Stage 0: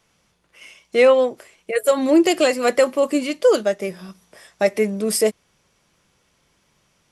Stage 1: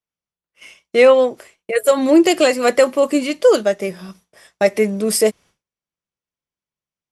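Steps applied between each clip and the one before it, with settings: expander -41 dBFS; gain +3 dB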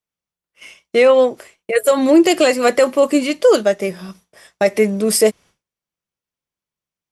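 maximiser +4.5 dB; gain -2.5 dB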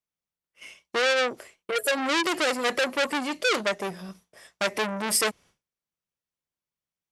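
core saturation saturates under 2900 Hz; gain -5.5 dB

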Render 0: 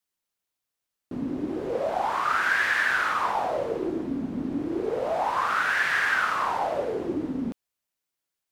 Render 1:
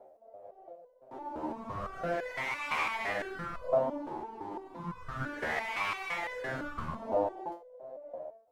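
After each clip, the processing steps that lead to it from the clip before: wind noise 87 Hz -31 dBFS; ring modulator 610 Hz; stepped resonator 5.9 Hz 77–500 Hz; gain +3.5 dB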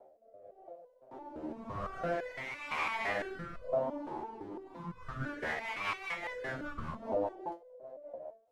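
high shelf 9600 Hz -6 dB; rotary speaker horn 0.9 Hz, later 5 Hz, at 4.31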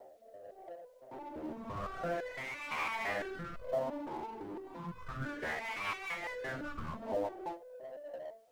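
G.711 law mismatch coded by mu; gain -3.5 dB

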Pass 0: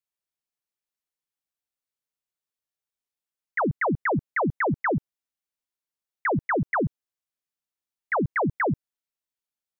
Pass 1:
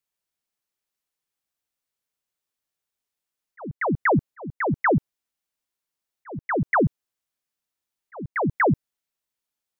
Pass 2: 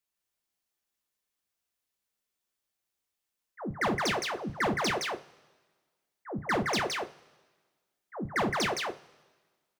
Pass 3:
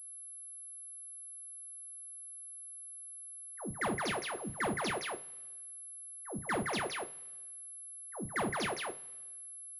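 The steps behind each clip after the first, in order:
auto swell 0.527 s; gain +5 dB
wavefolder -22.5 dBFS; echo 0.167 s -3 dB; two-slope reverb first 0.25 s, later 1.5 s, from -21 dB, DRR 6.5 dB; gain -2 dB
pulse-width modulation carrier 11000 Hz; gain -5.5 dB

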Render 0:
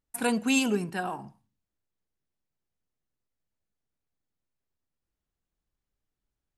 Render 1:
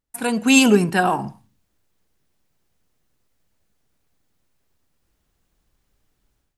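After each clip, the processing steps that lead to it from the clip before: AGC gain up to 15 dB; gain +2 dB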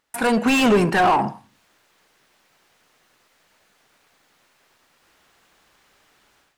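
overdrive pedal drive 28 dB, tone 1500 Hz, clips at -1 dBFS; mismatched tape noise reduction encoder only; gain -6.5 dB

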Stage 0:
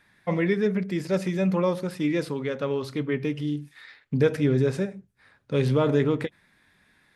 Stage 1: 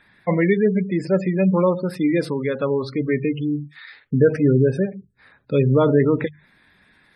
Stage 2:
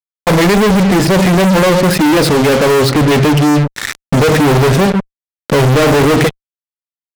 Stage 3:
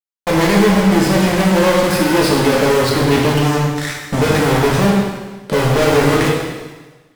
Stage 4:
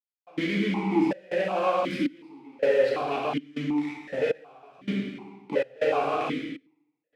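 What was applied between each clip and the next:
notches 50/100/150 Hz; spectral gate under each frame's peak -25 dB strong; gain +6 dB
fuzz box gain 42 dB, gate -38 dBFS; gain +5 dB
plate-style reverb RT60 1.3 s, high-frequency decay 1×, DRR -3 dB; gain -7.5 dB
step gate "..xxxx.xxxx." 80 bpm -24 dB; vowel sequencer 2.7 Hz

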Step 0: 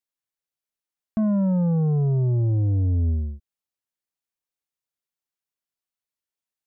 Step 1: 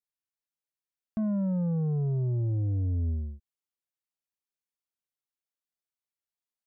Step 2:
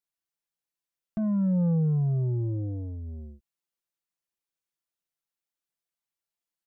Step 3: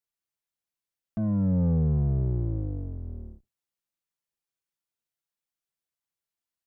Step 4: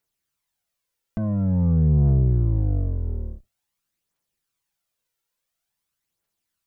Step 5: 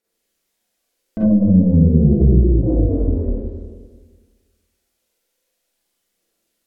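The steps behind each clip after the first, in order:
dynamic EQ 890 Hz, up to -4 dB, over -43 dBFS, Q 2; gain -7 dB
comb 5.9 ms, depth 64%
octaver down 1 oct, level -2 dB; gain -1.5 dB
limiter -25.5 dBFS, peak gain reduction 7 dB; phaser 0.48 Hz, delay 2.3 ms, feedback 45%; gain +8.5 dB
ten-band EQ 125 Hz -11 dB, 250 Hz +7 dB, 500 Hz +8 dB, 1000 Hz -6 dB; Schroeder reverb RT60 1.6 s, combs from 33 ms, DRR -9.5 dB; treble ducked by the level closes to 340 Hz, closed at -9 dBFS

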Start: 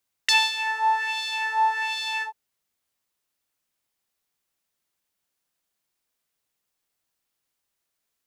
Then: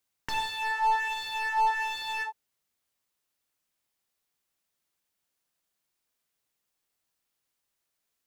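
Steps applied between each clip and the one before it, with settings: slew limiter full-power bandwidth 87 Hz; gain -1.5 dB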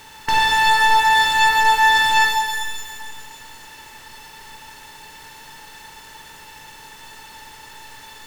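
per-bin compression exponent 0.4; shimmer reverb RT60 1.9 s, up +12 st, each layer -8 dB, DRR 1.5 dB; gain +8 dB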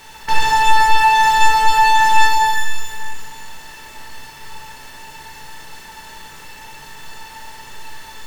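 in parallel at -12 dB: sine folder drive 10 dB, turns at -4.5 dBFS; on the sum: reverb RT60 0.75 s, pre-delay 5 ms, DRR -1 dB; gain -7 dB

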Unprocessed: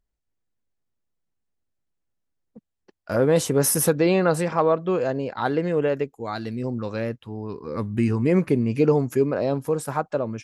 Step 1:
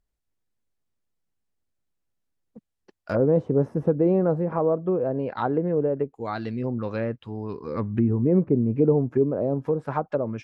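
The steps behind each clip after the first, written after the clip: treble ducked by the level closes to 590 Hz, closed at -19 dBFS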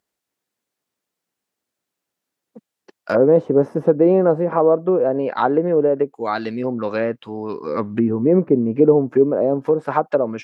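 Bessel high-pass 300 Hz, order 2; gain +9 dB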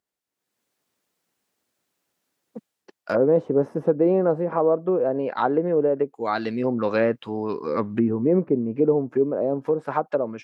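AGC gain up to 13 dB; gain -8 dB

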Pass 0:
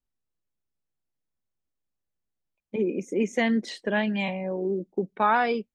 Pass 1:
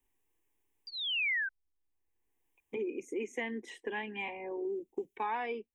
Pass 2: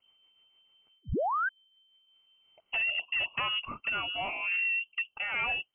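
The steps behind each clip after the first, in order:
painted sound fall, 0.87–1.49, 1500–4800 Hz -20 dBFS; fixed phaser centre 910 Hz, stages 8; three-band squash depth 70%; gain -8.5 dB
rotary speaker horn 6.7 Hz, later 1 Hz, at 1.63; in parallel at -5 dB: sine folder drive 9 dB, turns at -26.5 dBFS; on the sum: inverted band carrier 3100 Hz

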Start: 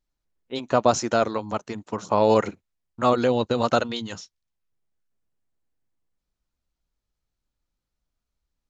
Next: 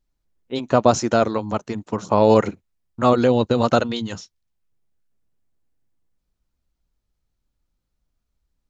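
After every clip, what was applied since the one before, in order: low shelf 410 Hz +6 dB; gain +1.5 dB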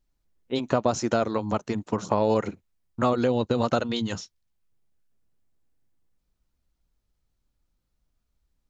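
compressor 3:1, threshold -21 dBFS, peak gain reduction 9.5 dB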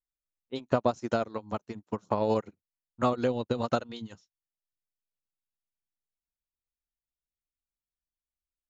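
upward expander 2.5:1, over -36 dBFS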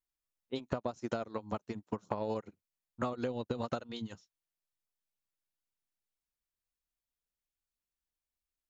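compressor 10:1, threshold -31 dBFS, peak gain reduction 12.5 dB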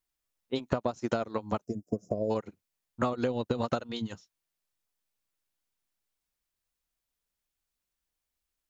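spectral gain 1.64–2.31, 730–4800 Hz -25 dB; gain +6 dB

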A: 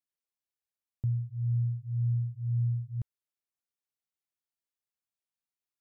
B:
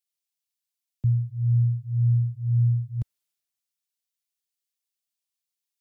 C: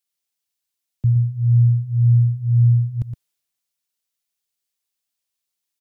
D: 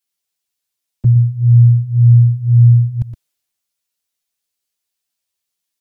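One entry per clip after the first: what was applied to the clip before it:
three-band expander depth 40%; gain +7.5 dB
outdoor echo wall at 20 m, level -8 dB; gain +5 dB
envelope flanger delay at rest 10.9 ms, full sweep at -13 dBFS; gain +6.5 dB

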